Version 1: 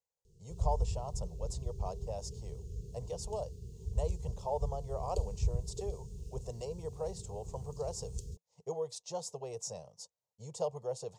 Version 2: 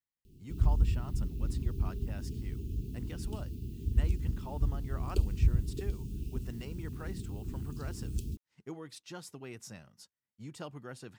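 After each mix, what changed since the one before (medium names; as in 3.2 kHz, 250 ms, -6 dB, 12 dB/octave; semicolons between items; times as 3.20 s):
background +6.0 dB; master: remove FFT filter 170 Hz 0 dB, 290 Hz -21 dB, 460 Hz +14 dB, 700 Hz +11 dB, 1 kHz +6 dB, 1.5 kHz -20 dB, 6.8 kHz +11 dB, 14 kHz -12 dB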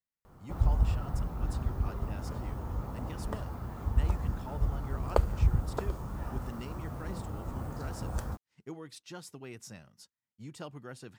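background: remove Chebyshev band-stop 410–2600 Hz, order 5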